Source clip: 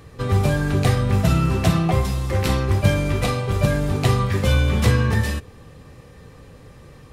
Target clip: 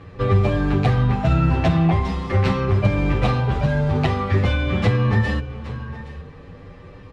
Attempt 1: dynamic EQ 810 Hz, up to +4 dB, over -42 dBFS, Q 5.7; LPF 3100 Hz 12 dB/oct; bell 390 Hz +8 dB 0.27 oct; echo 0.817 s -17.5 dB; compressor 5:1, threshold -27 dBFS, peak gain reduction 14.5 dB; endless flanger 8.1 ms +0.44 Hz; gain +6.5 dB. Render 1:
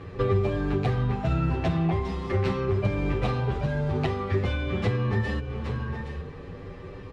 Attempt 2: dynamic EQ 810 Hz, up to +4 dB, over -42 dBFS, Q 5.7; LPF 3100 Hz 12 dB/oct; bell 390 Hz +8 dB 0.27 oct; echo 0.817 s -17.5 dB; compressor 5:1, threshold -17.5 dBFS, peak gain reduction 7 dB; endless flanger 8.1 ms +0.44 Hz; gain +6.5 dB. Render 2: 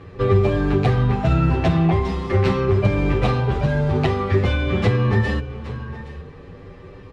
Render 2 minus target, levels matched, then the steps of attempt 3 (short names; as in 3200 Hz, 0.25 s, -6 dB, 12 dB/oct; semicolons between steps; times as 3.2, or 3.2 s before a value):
500 Hz band +3.0 dB
dynamic EQ 810 Hz, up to +4 dB, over -42 dBFS, Q 5.7; LPF 3100 Hz 12 dB/oct; echo 0.817 s -17.5 dB; compressor 5:1, threshold -17.5 dBFS, peak gain reduction 7 dB; endless flanger 8.1 ms +0.44 Hz; gain +6.5 dB